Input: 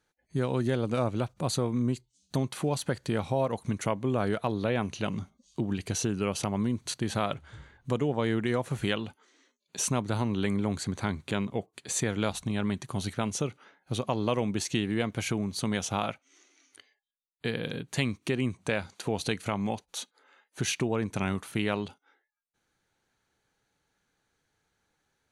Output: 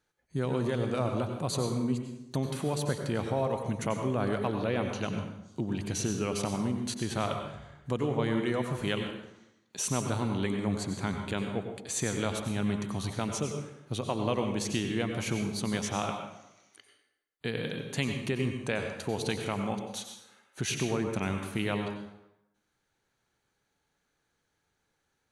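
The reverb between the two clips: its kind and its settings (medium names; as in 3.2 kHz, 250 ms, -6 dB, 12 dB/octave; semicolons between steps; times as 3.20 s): plate-style reverb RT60 0.87 s, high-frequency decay 0.75×, pre-delay 80 ms, DRR 4.5 dB; trim -2.5 dB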